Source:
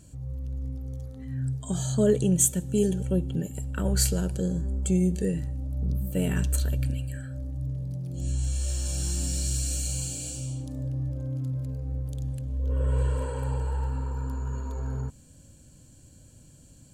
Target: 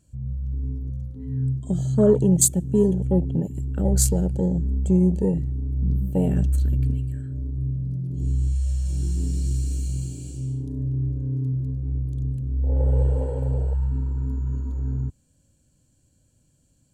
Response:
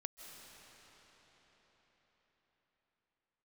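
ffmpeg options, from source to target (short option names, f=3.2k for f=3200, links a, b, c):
-af "afwtdn=0.0282,acontrast=37"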